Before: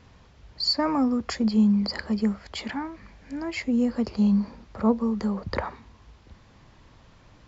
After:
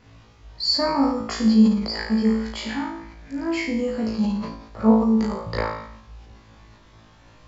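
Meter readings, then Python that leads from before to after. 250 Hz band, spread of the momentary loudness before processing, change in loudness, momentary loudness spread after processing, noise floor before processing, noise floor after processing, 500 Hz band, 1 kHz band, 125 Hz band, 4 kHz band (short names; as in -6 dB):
+3.5 dB, 12 LU, +3.5 dB, 13 LU, -55 dBFS, -52 dBFS, +5.0 dB, +4.5 dB, +1.5 dB, +3.5 dB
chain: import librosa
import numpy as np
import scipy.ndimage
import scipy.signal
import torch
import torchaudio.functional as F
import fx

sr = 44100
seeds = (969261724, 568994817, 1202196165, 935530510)

y = fx.room_flutter(x, sr, wall_m=3.1, rt60_s=0.65)
y = fx.sustainer(y, sr, db_per_s=73.0)
y = F.gain(torch.from_numpy(y), -1.5).numpy()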